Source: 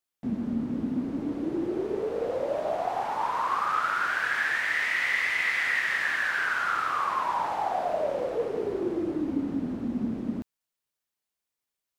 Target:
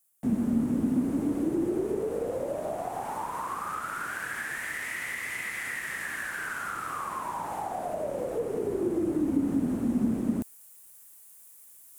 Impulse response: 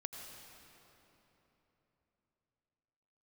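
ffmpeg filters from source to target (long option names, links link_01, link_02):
-filter_complex "[0:a]acrossover=split=340[link_01][link_02];[link_02]acompressor=threshold=-37dB:ratio=4[link_03];[link_01][link_03]amix=inputs=2:normalize=0,highshelf=frequency=6500:width_type=q:width=1.5:gain=14,areverse,acompressor=mode=upward:threshold=-40dB:ratio=2.5,areverse,volume=3.5dB"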